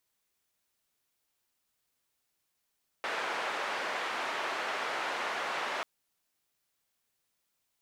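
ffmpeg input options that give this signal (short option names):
-f lavfi -i "anoisesrc=c=white:d=2.79:r=44100:seed=1,highpass=f=520,lowpass=f=1700,volume=-17.5dB"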